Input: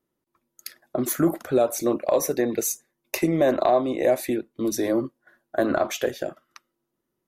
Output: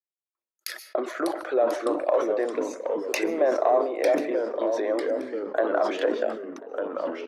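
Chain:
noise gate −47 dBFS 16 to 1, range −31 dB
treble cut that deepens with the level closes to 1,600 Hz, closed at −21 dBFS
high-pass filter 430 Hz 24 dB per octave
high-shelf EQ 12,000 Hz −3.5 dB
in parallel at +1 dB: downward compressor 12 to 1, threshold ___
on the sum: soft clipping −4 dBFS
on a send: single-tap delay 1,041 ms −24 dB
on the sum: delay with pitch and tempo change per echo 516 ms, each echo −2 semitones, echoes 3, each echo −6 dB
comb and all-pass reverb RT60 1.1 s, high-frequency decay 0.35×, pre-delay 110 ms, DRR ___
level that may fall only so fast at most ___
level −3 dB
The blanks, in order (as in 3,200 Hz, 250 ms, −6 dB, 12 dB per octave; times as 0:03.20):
−28 dBFS, 19.5 dB, 87 dB per second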